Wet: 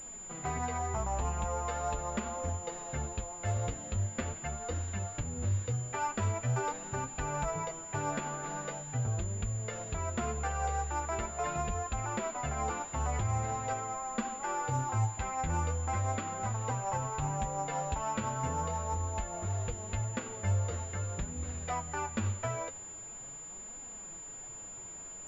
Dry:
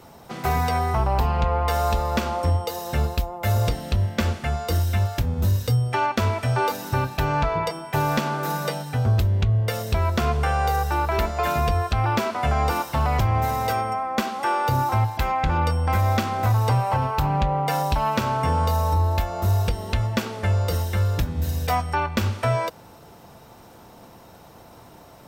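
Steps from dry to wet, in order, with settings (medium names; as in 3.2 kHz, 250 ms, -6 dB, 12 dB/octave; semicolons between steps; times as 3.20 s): added noise pink -44 dBFS; flange 0.42 Hz, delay 3.6 ms, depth 8.4 ms, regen +34%; class-D stage that switches slowly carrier 7.1 kHz; trim -8 dB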